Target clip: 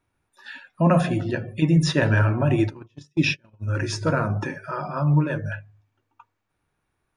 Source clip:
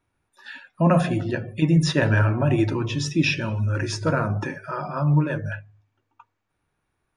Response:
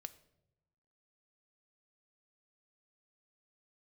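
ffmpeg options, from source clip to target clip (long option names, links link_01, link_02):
-filter_complex "[0:a]asplit=3[link_01][link_02][link_03];[link_01]afade=type=out:start_time=2.54:duration=0.02[link_04];[link_02]agate=range=-37dB:threshold=-21dB:ratio=16:detection=peak,afade=type=in:start_time=2.54:duration=0.02,afade=type=out:start_time=3.67:duration=0.02[link_05];[link_03]afade=type=in:start_time=3.67:duration=0.02[link_06];[link_04][link_05][link_06]amix=inputs=3:normalize=0"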